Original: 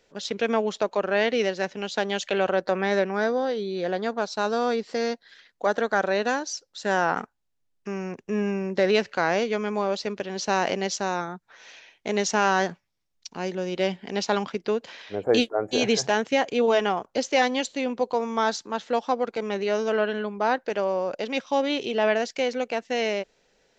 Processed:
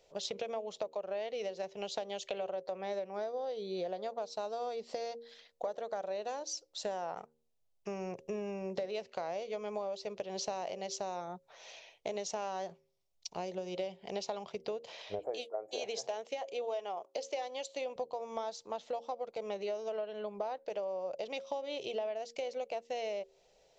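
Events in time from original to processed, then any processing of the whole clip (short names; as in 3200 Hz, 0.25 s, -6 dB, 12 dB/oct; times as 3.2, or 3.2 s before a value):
15.19–17.96 HPF 320 Hz
whole clip: fifteen-band EQ 250 Hz -12 dB, 630 Hz +8 dB, 1600 Hz -12 dB; compressor 12:1, threshold -32 dBFS; de-hum 77.95 Hz, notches 7; gain -2.5 dB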